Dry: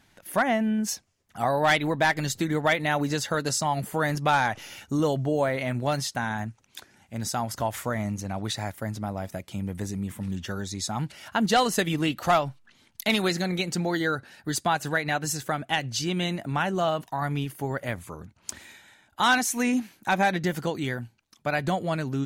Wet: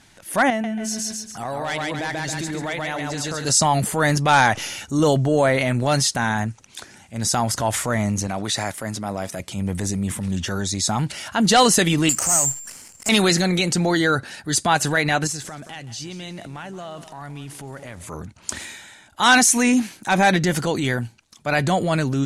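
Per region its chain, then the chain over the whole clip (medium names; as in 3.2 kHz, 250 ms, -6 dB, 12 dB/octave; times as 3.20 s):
0.50–3.45 s: feedback delay 137 ms, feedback 34%, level -3.5 dB + compression 4:1, threshold -33 dBFS
8.27–9.40 s: high-pass 230 Hz 6 dB/octave + band-stop 870 Hz, Q 23
12.09–13.09 s: CVSD coder 16 kbps + compression 2.5:1, threshold -36 dBFS + careless resampling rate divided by 6×, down none, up zero stuff
15.27–18.07 s: median filter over 3 samples + compression, threshold -40 dBFS + bit-crushed delay 177 ms, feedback 35%, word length 9-bit, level -14 dB
whole clip: low-pass 10 kHz 24 dB/octave; treble shelf 6.6 kHz +10.5 dB; transient shaper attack -6 dB, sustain +4 dB; trim +7.5 dB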